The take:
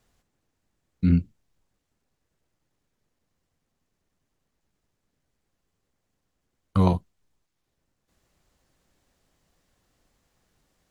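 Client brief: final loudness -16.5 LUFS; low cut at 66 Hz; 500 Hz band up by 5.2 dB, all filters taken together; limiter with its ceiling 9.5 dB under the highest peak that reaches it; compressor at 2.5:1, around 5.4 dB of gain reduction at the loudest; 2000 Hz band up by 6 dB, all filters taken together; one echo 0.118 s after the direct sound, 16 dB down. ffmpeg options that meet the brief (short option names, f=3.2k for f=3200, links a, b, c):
-af "highpass=66,equalizer=f=500:t=o:g=6,equalizer=f=2k:t=o:g=7.5,acompressor=threshold=-22dB:ratio=2.5,alimiter=limit=-20.5dB:level=0:latency=1,aecho=1:1:118:0.158,volume=17.5dB"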